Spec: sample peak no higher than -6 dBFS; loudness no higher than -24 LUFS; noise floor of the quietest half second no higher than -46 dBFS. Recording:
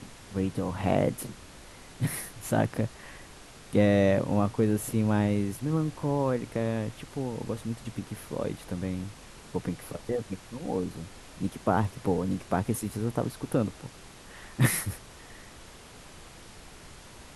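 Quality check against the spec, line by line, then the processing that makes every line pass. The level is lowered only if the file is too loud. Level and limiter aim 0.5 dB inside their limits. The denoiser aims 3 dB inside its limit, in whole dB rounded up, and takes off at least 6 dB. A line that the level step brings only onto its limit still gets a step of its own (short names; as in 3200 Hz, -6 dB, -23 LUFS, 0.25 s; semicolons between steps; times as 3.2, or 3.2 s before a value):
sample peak -9.5 dBFS: OK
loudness -30.0 LUFS: OK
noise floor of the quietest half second -49 dBFS: OK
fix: none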